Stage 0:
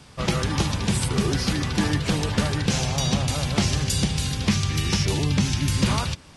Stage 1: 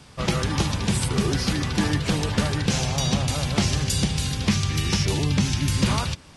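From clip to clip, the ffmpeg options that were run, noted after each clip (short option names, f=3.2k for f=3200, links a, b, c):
-af anull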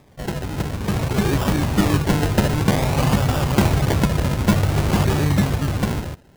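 -af "acrusher=samples=30:mix=1:aa=0.000001:lfo=1:lforange=18:lforate=0.53,dynaudnorm=f=230:g=9:m=11dB,volume=-3.5dB"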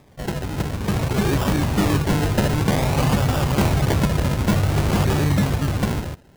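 -af "volume=13dB,asoftclip=hard,volume=-13dB"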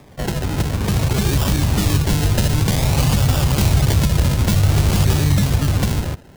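-filter_complex "[0:a]acrossover=split=130|3000[a][b][c];[b]acompressor=threshold=-29dB:ratio=6[d];[a][d][c]amix=inputs=3:normalize=0,volume=7dB"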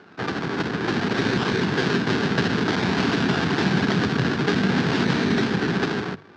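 -af "aeval=exprs='abs(val(0))':c=same,highpass=f=110:w=0.5412,highpass=f=110:w=1.3066,equalizer=f=400:t=q:w=4:g=6,equalizer=f=570:t=q:w=4:g=-7,equalizer=f=1.6k:t=q:w=4:g=9,lowpass=f=4.7k:w=0.5412,lowpass=f=4.7k:w=1.3066,bandreject=f=50:t=h:w=6,bandreject=f=100:t=h:w=6,bandreject=f=150:t=h:w=6"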